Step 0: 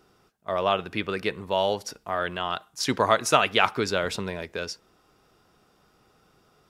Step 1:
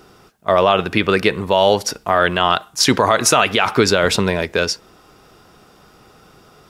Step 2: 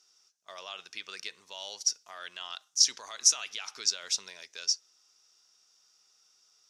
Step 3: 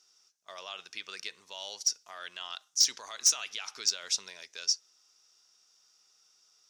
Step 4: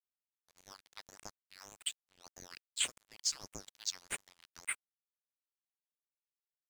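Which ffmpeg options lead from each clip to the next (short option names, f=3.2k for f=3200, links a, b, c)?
-af "alimiter=level_in=15dB:limit=-1dB:release=50:level=0:latency=1,volume=-1dB"
-af "bandpass=f=5.9k:t=q:w=4.7:csg=0,volume=-1.5dB"
-af "asoftclip=type=hard:threshold=-16dB"
-af "bandpass=f=3.3k:t=q:w=0.63:csg=0,aeval=exprs='sgn(val(0))*max(abs(val(0))-0.0075,0)':c=same,aeval=exprs='val(0)*sin(2*PI*2000*n/s+2000*0.7/1.7*sin(2*PI*1.7*n/s))':c=same,volume=-4dB"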